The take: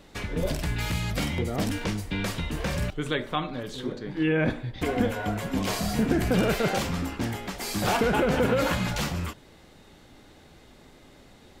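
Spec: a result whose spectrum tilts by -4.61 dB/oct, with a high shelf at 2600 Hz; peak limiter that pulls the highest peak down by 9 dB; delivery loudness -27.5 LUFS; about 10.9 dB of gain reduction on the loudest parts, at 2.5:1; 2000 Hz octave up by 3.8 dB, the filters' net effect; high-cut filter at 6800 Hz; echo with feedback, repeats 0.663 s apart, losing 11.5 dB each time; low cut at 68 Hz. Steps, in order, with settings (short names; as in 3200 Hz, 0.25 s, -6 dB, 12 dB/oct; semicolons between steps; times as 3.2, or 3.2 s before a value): HPF 68 Hz; LPF 6800 Hz; bell 2000 Hz +3 dB; high shelf 2600 Hz +4.5 dB; compressor 2.5:1, threshold -36 dBFS; limiter -28 dBFS; feedback echo 0.663 s, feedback 27%, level -11.5 dB; gain +10 dB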